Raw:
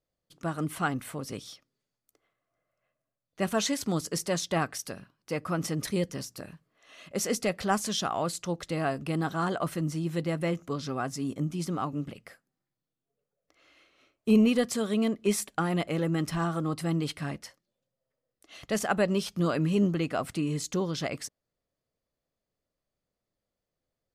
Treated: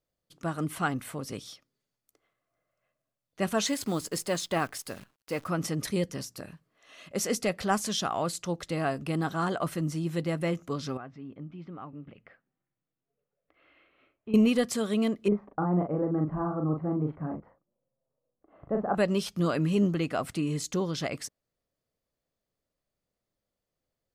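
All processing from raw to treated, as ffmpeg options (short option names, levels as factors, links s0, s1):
-filter_complex "[0:a]asettb=1/sr,asplit=3[s0][s1][s2];[s0]atrim=end=3.674[s3];[s1]atrim=start=3.67:end=5.48,asetpts=PTS-STARTPTS,afade=t=in:d=0.004:c=qsin,afade=t=out:st=1.806:d=0.004:c=qsin,equalizer=f=160:w=3.6:g=-4.5,bandreject=f=5800:w=8.3,acrusher=bits=9:dc=4:mix=0:aa=0.000001[s4];[s2]atrim=start=5.476[s5];[s3][s4]acrossfade=d=0.004:c1=hsin:c2=qsin[s6];[s6][s5]acrossfade=d=0.004:c1=qsin:c2=hsin,asettb=1/sr,asplit=3[s7][s8][s9];[s7]atrim=end=10.974[s10];[s8]atrim=start=10.97:end=14.34,asetpts=PTS-STARTPTS,afade=t=in:d=0.004:c=qsin,afade=t=out:st=3.366:d=0.004:c=qsin,lowpass=f=2800:w=0.5412,lowpass=f=2800:w=1.3066,acompressor=threshold=0.00126:ratio=1.5:attack=3.2:release=140:knee=1:detection=peak[s11];[s9]atrim=start=14.336[s12];[s10][s11]acrossfade=d=0.004:c1=hsin:c2=qsin[s13];[s13][s12]acrossfade=d=0.004:c1=qsin:c2=hsin,asettb=1/sr,asplit=3[s14][s15][s16];[s14]atrim=end=15.284[s17];[s15]atrim=start=15.28:end=18.95,asetpts=PTS-STARTPTS,afade=t=in:d=0.004:c=qsin,afade=t=out:st=3.666:d=0.004:c=qsin,lowpass=f=1100:w=0.5412,lowpass=f=1100:w=1.3066,asplit=2[s18][s19];[s19]adelay=39,volume=0.631[s20];[s18][s20]amix=inputs=2:normalize=0,atrim=end_sample=161847[s21];[s16]atrim=start=18.946[s22];[s17][s21]acrossfade=d=0.004:c1=hsin:c2=qsin[s23];[s23][s22]acrossfade=d=0.004:c1=qsin:c2=hsin"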